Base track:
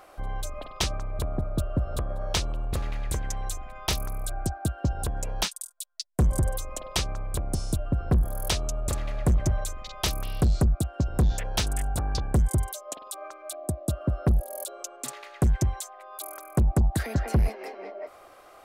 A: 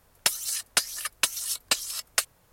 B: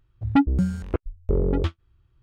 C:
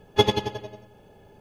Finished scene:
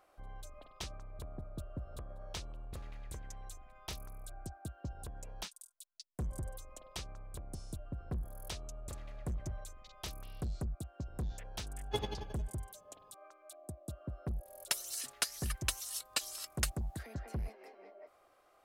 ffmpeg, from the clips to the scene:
ffmpeg -i bed.wav -i cue0.wav -i cue1.wav -i cue2.wav -filter_complex "[0:a]volume=-16.5dB[link_01];[3:a]atrim=end=1.4,asetpts=PTS-STARTPTS,volume=-17.5dB,afade=type=in:duration=0.004:curve=hsin,afade=type=out:start_time=1.396:duration=0.004:curve=hsin,adelay=11750[link_02];[1:a]atrim=end=2.52,asetpts=PTS-STARTPTS,volume=-10.5dB,afade=type=in:duration=0.004:curve=hsin,afade=type=out:start_time=2.516:duration=0.004:curve=hsin,adelay=14450[link_03];[link_01][link_02][link_03]amix=inputs=3:normalize=0" out.wav

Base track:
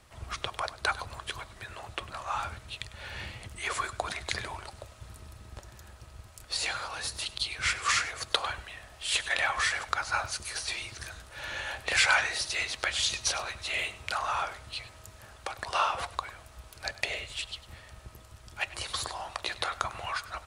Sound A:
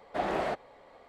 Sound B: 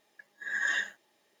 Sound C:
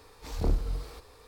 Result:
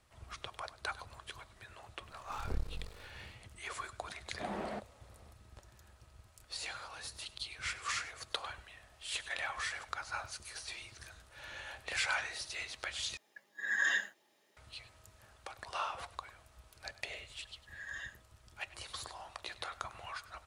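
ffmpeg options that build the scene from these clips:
ffmpeg -i bed.wav -i cue0.wav -i cue1.wav -i cue2.wav -filter_complex "[2:a]asplit=2[link_01][link_02];[0:a]volume=-10.5dB[link_03];[3:a]aeval=exprs='max(val(0),0)':channel_layout=same[link_04];[1:a]equalizer=frequency=210:width=4.7:gain=12.5[link_05];[link_01]highpass=98[link_06];[link_03]asplit=2[link_07][link_08];[link_07]atrim=end=13.174[link_09];[link_06]atrim=end=1.4,asetpts=PTS-STARTPTS,volume=-1.5dB[link_10];[link_08]atrim=start=14.566[link_11];[link_04]atrim=end=1.27,asetpts=PTS-STARTPTS,volume=-7dB,afade=type=in:duration=0.004:curve=hsin,afade=type=out:start_time=1.266:duration=0.004:curve=hsin,adelay=2060[link_12];[link_05]atrim=end=1.08,asetpts=PTS-STARTPTS,volume=-10.5dB,afade=type=in:duration=0.004:curve=hsin,afade=type=out:start_time=1.076:duration=0.004:curve=hsin,adelay=187425S[link_13];[link_02]atrim=end=1.4,asetpts=PTS-STARTPTS,volume=-15dB,afade=type=in:duration=0.004:curve=hsin,afade=type=out:start_time=1.396:duration=0.004:curve=hsin,adelay=17260[link_14];[link_09][link_10]acrossfade=duration=0.004:curve1=hsin:curve2=hsin[link_15];[link_15][link_11]acrossfade=duration=0.004:curve1=hsin:curve2=hsin[link_16];[link_16][link_12][link_13][link_14]amix=inputs=4:normalize=0" out.wav

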